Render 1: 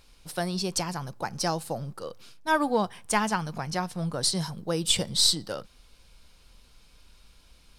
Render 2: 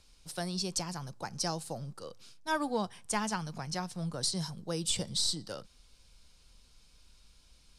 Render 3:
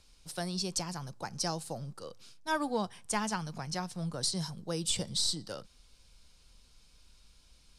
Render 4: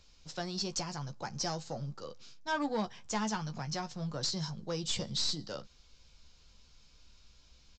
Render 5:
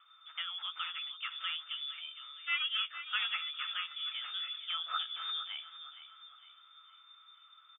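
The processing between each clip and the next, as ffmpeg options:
ffmpeg -i in.wav -filter_complex "[0:a]lowpass=8700,bass=frequency=250:gain=3,treble=frequency=4000:gain=9,acrossover=split=290|1500[link_01][link_02][link_03];[link_03]alimiter=limit=-12.5dB:level=0:latency=1:release=180[link_04];[link_01][link_02][link_04]amix=inputs=3:normalize=0,volume=-8dB" out.wav
ffmpeg -i in.wav -af anull out.wav
ffmpeg -i in.wav -filter_complex "[0:a]aresample=16000,asoftclip=type=tanh:threshold=-26dB,aresample=44100,asplit=2[link_01][link_02];[link_02]adelay=14,volume=-8dB[link_03];[link_01][link_03]amix=inputs=2:normalize=0" out.wav
ffmpeg -i in.wav -filter_complex "[0:a]lowpass=frequency=3100:width_type=q:width=0.5098,lowpass=frequency=3100:width_type=q:width=0.6013,lowpass=frequency=3100:width_type=q:width=0.9,lowpass=frequency=3100:width_type=q:width=2.563,afreqshift=-3600,highpass=frequency=1300:width_type=q:width=14,asplit=2[link_01][link_02];[link_02]aecho=0:1:462|924|1386|1848:0.251|0.111|0.0486|0.0214[link_03];[link_01][link_03]amix=inputs=2:normalize=0,volume=-3.5dB" out.wav

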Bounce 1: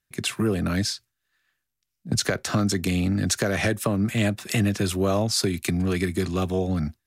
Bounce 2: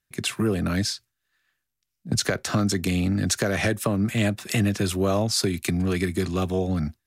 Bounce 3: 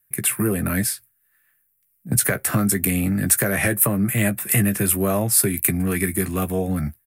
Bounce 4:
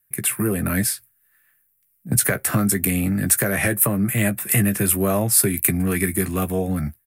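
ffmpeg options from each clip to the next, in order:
ffmpeg -i in.wav -af anull out.wav
ffmpeg -i in.wav -filter_complex "[0:a]equalizer=frequency=125:width_type=o:width=1:gain=4,equalizer=frequency=2000:width_type=o:width=1:gain=7,equalizer=frequency=4000:width_type=o:width=1:gain=-9,aexciter=amount=11.8:drive=3.9:freq=8900,asplit=2[link_01][link_02];[link_02]adelay=15,volume=-9dB[link_03];[link_01][link_03]amix=inputs=2:normalize=0" out.wav
ffmpeg -i in.wav -af "dynaudnorm=framelen=410:gausssize=5:maxgain=11.5dB,volume=-1dB" out.wav

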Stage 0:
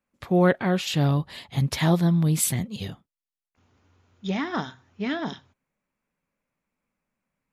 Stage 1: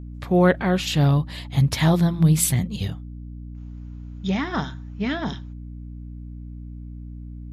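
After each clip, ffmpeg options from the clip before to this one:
ffmpeg -i in.wav -af "bandreject=frequency=170.1:width_type=h:width=4,bandreject=frequency=340.2:width_type=h:width=4,asubboost=boost=2.5:cutoff=180,aeval=exprs='val(0)+0.0141*(sin(2*PI*60*n/s)+sin(2*PI*2*60*n/s)/2+sin(2*PI*3*60*n/s)/3+sin(2*PI*4*60*n/s)/4+sin(2*PI*5*60*n/s)/5)':channel_layout=same,volume=2.5dB" out.wav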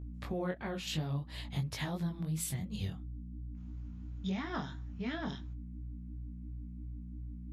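ffmpeg -i in.wav -af "acompressor=threshold=-27dB:ratio=4,flanger=delay=18.5:depth=3.5:speed=2.9,volume=-4.5dB" out.wav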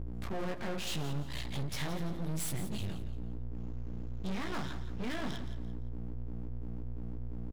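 ffmpeg -i in.wav -af "aeval=exprs='(tanh(56.2*val(0)+0.6)-tanh(0.6))/56.2':channel_layout=same,aeval=exprs='max(val(0),0)':channel_layout=same,aecho=1:1:171|342|513:0.251|0.0829|0.0274,volume=13.5dB" out.wav

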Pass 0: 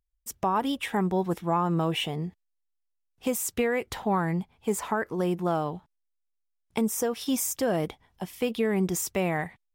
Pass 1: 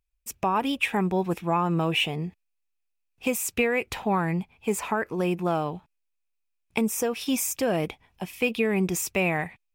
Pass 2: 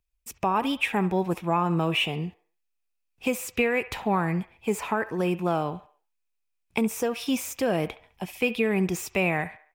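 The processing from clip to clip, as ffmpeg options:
ffmpeg -i in.wav -af "equalizer=frequency=2500:width=5.8:gain=13.5,volume=1dB" out.wav
ffmpeg -i in.wav -filter_complex "[0:a]acrossover=split=490|3800[link_01][link_02][link_03];[link_02]aecho=1:1:69|138|207|276:0.2|0.0858|0.0369|0.0159[link_04];[link_03]asoftclip=type=tanh:threshold=-34dB[link_05];[link_01][link_04][link_05]amix=inputs=3:normalize=0" out.wav

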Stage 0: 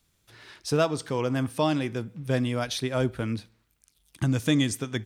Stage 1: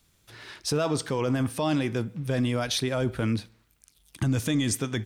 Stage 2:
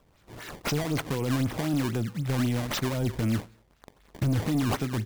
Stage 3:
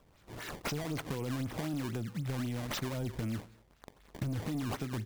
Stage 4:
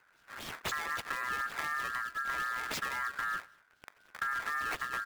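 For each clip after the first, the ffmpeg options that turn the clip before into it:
ffmpeg -i in.wav -af "alimiter=limit=-21.5dB:level=0:latency=1:release=11,volume=4.5dB" out.wav
ffmpeg -i in.wav -filter_complex "[0:a]acrossover=split=350|5400[link_01][link_02][link_03];[link_02]acompressor=threshold=-38dB:ratio=6[link_04];[link_01][link_04][link_03]amix=inputs=3:normalize=0,acrusher=samples=19:mix=1:aa=0.000001:lfo=1:lforange=30.4:lforate=3.9,asoftclip=type=tanh:threshold=-23.5dB,volume=3.5dB" out.wav
ffmpeg -i in.wav -af "acompressor=threshold=-32dB:ratio=6,volume=-1.5dB" out.wav
ffmpeg -i in.wav -filter_complex "[0:a]aeval=exprs='val(0)*sin(2*PI*1500*n/s)':channel_layout=same,asplit=2[link_01][link_02];[link_02]aeval=exprs='val(0)*gte(abs(val(0)),0.00596)':channel_layout=same,volume=-7dB[link_03];[link_01][link_03]amix=inputs=2:normalize=0" out.wav

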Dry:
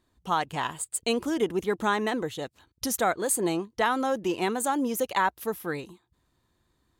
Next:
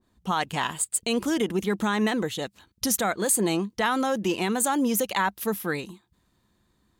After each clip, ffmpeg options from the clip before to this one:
ffmpeg -i in.wav -af "equalizer=frequency=200:width_type=o:width=0.32:gain=9.5,alimiter=limit=-18dB:level=0:latency=1:release=61,adynamicequalizer=threshold=0.01:dfrequency=1500:dqfactor=0.7:tfrequency=1500:tqfactor=0.7:attack=5:release=100:ratio=0.375:range=2.5:mode=boostabove:tftype=highshelf,volume=2dB" out.wav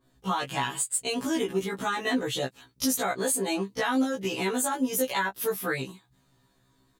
ffmpeg -i in.wav -af "aecho=1:1:7.3:0.76,acompressor=threshold=-27dB:ratio=3,afftfilt=real='re*1.73*eq(mod(b,3),0)':imag='im*1.73*eq(mod(b,3),0)':win_size=2048:overlap=0.75,volume=3.5dB" out.wav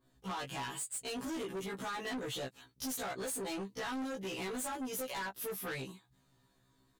ffmpeg -i in.wav -af "asoftclip=type=tanh:threshold=-31dB,volume=-5dB" out.wav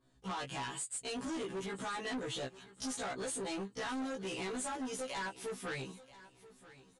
ffmpeg -i in.wav -af "aecho=1:1:983|1966|2949:0.126|0.039|0.0121,aresample=22050,aresample=44100" out.wav

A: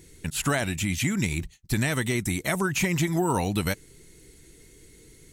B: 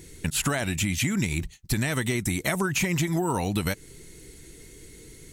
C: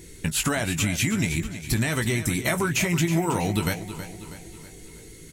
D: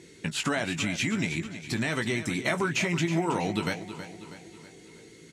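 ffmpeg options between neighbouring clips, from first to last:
ffmpeg -i in.wav -af "acompressor=threshold=-27dB:ratio=6,volume=5dB" out.wav
ffmpeg -i in.wav -filter_complex "[0:a]asplit=2[link_01][link_02];[link_02]adelay=18,volume=-8dB[link_03];[link_01][link_03]amix=inputs=2:normalize=0,aecho=1:1:322|644|966|1288|1610:0.251|0.126|0.0628|0.0314|0.0157,volume=1dB" out.wav
ffmpeg -i in.wav -af "highpass=170,lowpass=5500,volume=-2dB" out.wav

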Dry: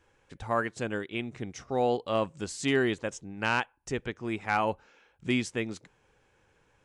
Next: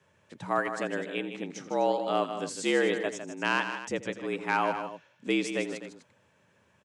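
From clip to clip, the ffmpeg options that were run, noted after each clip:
ffmpeg -i in.wav -filter_complex "[0:a]afreqshift=76,asplit=2[link_01][link_02];[link_02]aecho=0:1:83|155|251:0.141|0.355|0.2[link_03];[link_01][link_03]amix=inputs=2:normalize=0" out.wav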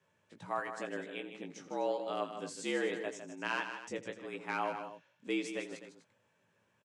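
ffmpeg -i in.wav -filter_complex "[0:a]lowshelf=frequency=71:gain=-6,asplit=2[link_01][link_02];[link_02]adelay=18,volume=-6dB[link_03];[link_01][link_03]amix=inputs=2:normalize=0,volume=-9dB" out.wav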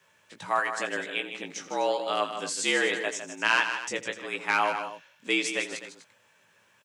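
ffmpeg -i in.wav -af "tiltshelf=frequency=730:gain=-7,volume=8.5dB" out.wav

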